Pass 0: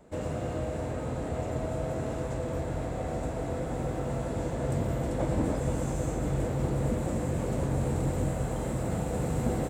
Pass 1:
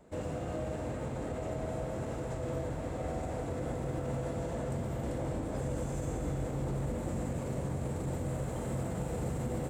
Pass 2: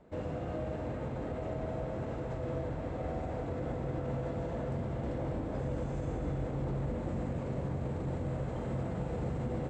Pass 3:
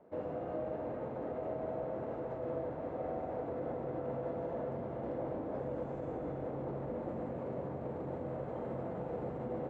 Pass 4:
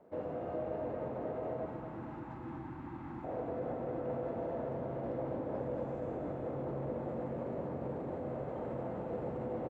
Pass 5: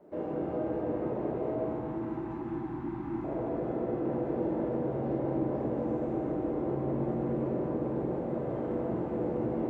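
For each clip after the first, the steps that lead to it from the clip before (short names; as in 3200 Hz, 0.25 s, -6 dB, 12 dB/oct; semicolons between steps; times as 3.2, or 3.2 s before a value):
limiter -25.5 dBFS, peak gain reduction 9 dB; on a send at -6 dB: reverb RT60 2.9 s, pre-delay 30 ms; on the sum: gain -3 dB
median filter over 3 samples; air absorption 140 m
band-pass 590 Hz, Q 0.75; gain +1 dB
spectral gain 1.65–3.24, 370–770 Hz -25 dB; feedback echo 0.229 s, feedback 57%, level -8.5 dB
bell 320 Hz +9.5 dB 0.45 oct; shoebox room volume 230 m³, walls mixed, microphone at 1.2 m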